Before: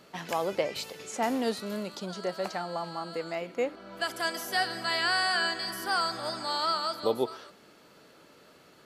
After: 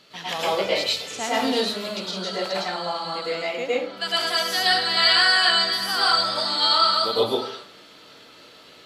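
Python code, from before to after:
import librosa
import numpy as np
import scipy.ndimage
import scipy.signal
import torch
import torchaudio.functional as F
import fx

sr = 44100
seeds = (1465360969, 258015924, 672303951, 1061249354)

y = fx.peak_eq(x, sr, hz=3700.0, db=13.0, octaves=1.6)
y = fx.rev_plate(y, sr, seeds[0], rt60_s=0.51, hf_ratio=0.55, predelay_ms=95, drr_db=-7.5)
y = F.gain(torch.from_numpy(y), -4.0).numpy()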